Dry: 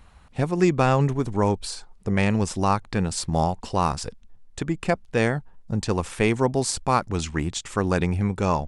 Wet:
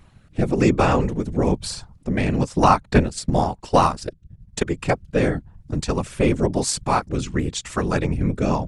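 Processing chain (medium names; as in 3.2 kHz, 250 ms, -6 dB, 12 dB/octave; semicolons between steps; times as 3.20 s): 2.32–4.65 s: transient shaper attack +9 dB, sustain -7 dB; rotary cabinet horn 1 Hz; whisper effect; trim +3.5 dB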